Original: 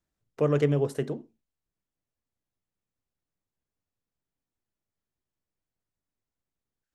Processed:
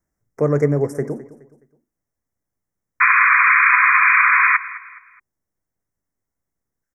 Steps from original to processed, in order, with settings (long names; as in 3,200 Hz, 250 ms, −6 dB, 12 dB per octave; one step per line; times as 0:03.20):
elliptic band-stop filter 2,100–5,400 Hz, stop band 40 dB
sound drawn into the spectrogram noise, 0:03.00–0:04.57, 990–2,500 Hz −20 dBFS
on a send: repeating echo 210 ms, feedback 36%, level −17 dB
on the sum: level +6.5 dB